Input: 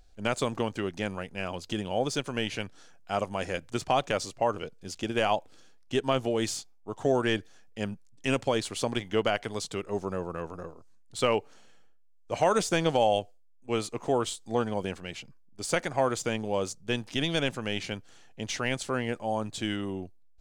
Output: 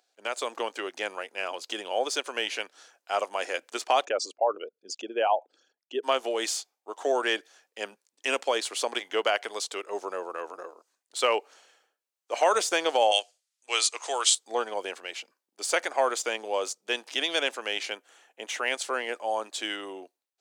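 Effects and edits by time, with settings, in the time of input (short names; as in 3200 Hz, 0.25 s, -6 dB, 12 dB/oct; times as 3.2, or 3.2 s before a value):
4.05–6.03 formant sharpening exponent 2
13.11–14.35 weighting filter ITU-R 468
17.95–18.68 bell 4800 Hz -10 dB 0.76 oct
whole clip: Bessel high-pass 560 Hz, order 6; AGC gain up to 6 dB; gain -2 dB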